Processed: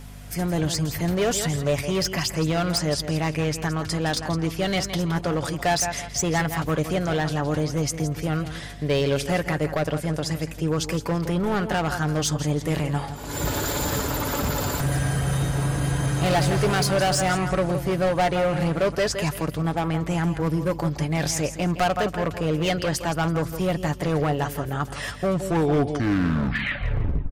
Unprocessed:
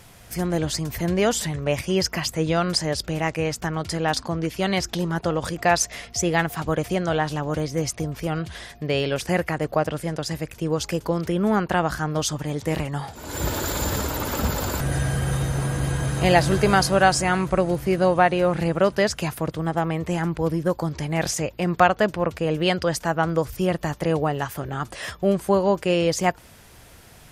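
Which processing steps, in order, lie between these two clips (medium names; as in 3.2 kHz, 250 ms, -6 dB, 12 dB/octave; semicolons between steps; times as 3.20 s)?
tape stop on the ending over 2.08 s; feedback delay 166 ms, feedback 28%, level -12 dB; overload inside the chain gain 18.5 dB; hum 50 Hz, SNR 15 dB; comb 7 ms, depth 35%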